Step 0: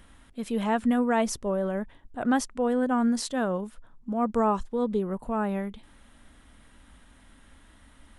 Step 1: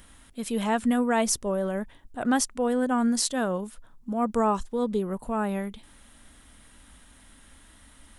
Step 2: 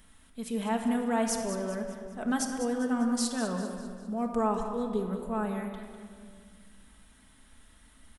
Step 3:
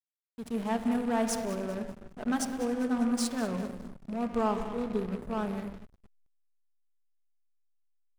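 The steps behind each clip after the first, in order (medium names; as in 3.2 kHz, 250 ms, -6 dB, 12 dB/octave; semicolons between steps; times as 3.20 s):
treble shelf 4.4 kHz +11 dB
feedback delay 199 ms, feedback 47%, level -11 dB; simulated room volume 2900 m³, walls mixed, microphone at 1.5 m; trim -7.5 dB
rattle on loud lows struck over -35 dBFS, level -36 dBFS; hysteresis with a dead band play -32.5 dBFS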